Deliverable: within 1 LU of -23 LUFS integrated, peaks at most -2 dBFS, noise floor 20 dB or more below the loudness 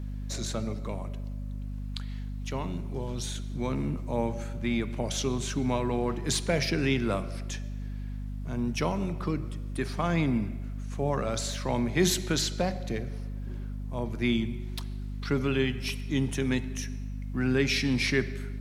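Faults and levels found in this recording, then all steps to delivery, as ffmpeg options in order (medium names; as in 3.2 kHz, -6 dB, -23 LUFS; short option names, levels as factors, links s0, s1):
hum 50 Hz; highest harmonic 250 Hz; hum level -33 dBFS; loudness -30.5 LUFS; peak level -12.5 dBFS; loudness target -23.0 LUFS
-> -af "bandreject=f=50:t=h:w=6,bandreject=f=100:t=h:w=6,bandreject=f=150:t=h:w=6,bandreject=f=200:t=h:w=6,bandreject=f=250:t=h:w=6"
-af "volume=2.37"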